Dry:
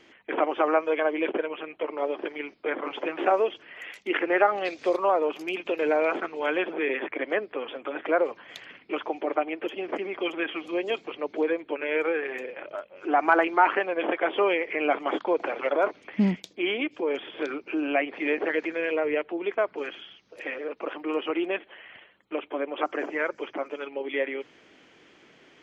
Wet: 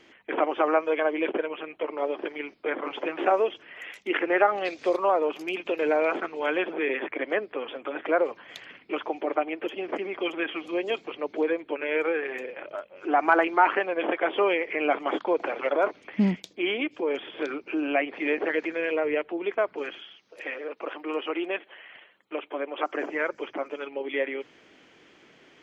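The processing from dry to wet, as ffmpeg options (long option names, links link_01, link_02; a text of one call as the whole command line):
ffmpeg -i in.wav -filter_complex "[0:a]asettb=1/sr,asplit=3[link_01][link_02][link_03];[link_01]atrim=end=3.244[link_04];[link_02]atrim=start=3.24:end=4.57,asetpts=PTS-STARTPTS,afade=type=in:duration=0.004:curve=qsin,afade=type=out:start_time=1.326:duration=0.004:curve=qsin,bandreject=frequency=4500:width=12[link_05];[link_03]atrim=start=4.566[link_06];[link_04][link_05]acrossfade=duration=0.004:curve1=hsin:curve2=qsin[link_07];[link_07][link_06]acrossfade=duration=0.004:curve1=qsin:curve2=hsin,asettb=1/sr,asplit=3[link_08][link_09][link_10];[link_08]atrim=end=19.984[link_11];[link_09]atrim=start=19.98:end=22.95,asetpts=PTS-STARTPTS,afade=type=in:duration=0.004:curve=qsin,afade=type=out:start_time=2.966:duration=0.004:curve=qsin,highpass=frequency=330:poles=1[link_12];[link_10]atrim=start=22.946[link_13];[link_11][link_12]acrossfade=duration=0.004:curve1=hsin:curve2=qsin[link_14];[link_14][link_13]acrossfade=duration=0.004:curve1=qsin:curve2=hsin" out.wav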